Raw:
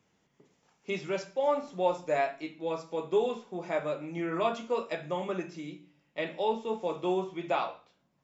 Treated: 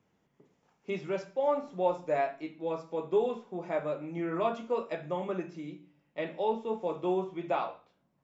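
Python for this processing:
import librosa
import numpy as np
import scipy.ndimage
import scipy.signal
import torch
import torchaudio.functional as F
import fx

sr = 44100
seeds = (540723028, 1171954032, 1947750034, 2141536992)

y = fx.high_shelf(x, sr, hz=2400.0, db=-10.0)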